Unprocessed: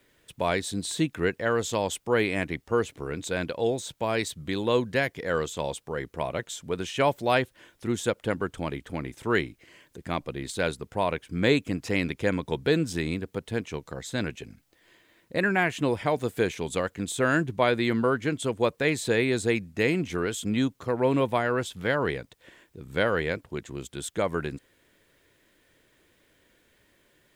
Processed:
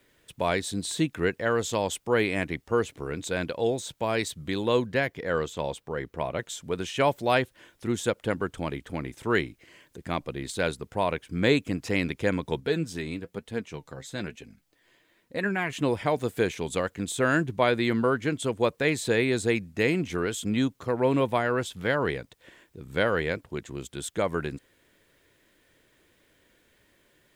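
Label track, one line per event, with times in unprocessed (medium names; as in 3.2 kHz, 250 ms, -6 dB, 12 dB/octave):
4.860000	6.390000	peaking EQ 9.6 kHz -6.5 dB 2 oct
12.600000	15.730000	flange 1.1 Hz, delay 3.6 ms, depth 4.5 ms, regen +55%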